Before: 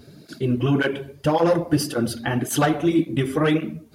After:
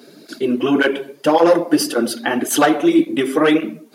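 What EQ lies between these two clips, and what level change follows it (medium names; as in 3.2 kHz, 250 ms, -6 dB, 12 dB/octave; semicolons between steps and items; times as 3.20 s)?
high-pass 240 Hz 24 dB/octave; +6.5 dB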